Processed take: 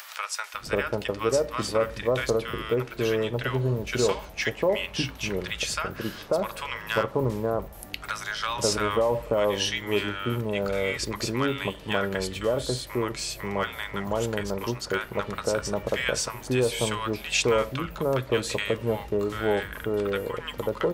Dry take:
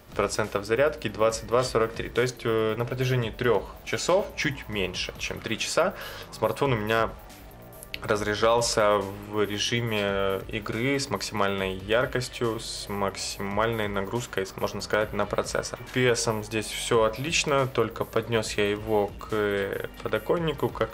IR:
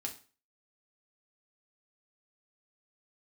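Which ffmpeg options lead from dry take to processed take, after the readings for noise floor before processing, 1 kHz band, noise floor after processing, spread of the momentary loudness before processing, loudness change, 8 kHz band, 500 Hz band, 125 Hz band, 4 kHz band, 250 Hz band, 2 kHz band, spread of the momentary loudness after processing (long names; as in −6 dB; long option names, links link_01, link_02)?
−44 dBFS, −2.5 dB, −43 dBFS, 8 LU, −1.0 dB, 0.0 dB, −0.5 dB, 0.0 dB, 0.0 dB, 0.0 dB, −0.5 dB, 6 LU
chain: -filter_complex "[0:a]acrossover=split=980[link_01][link_02];[link_01]adelay=540[link_03];[link_03][link_02]amix=inputs=2:normalize=0,acompressor=mode=upward:threshold=-32dB:ratio=2.5"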